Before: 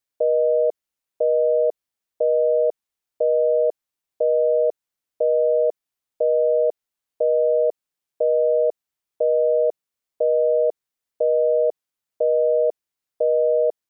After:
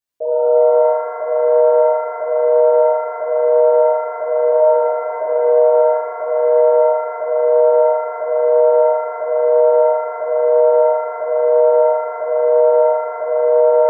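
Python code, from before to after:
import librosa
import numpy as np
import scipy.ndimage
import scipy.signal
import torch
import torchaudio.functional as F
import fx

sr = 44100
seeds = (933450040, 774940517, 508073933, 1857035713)

y = fx.cheby1_lowpass(x, sr, hz=620.0, order=2, at=(4.51, 5.22))
y = fx.rev_shimmer(y, sr, seeds[0], rt60_s=3.5, semitones=7, shimmer_db=-8, drr_db=-11.0)
y = y * 10.0 ** (-6.5 / 20.0)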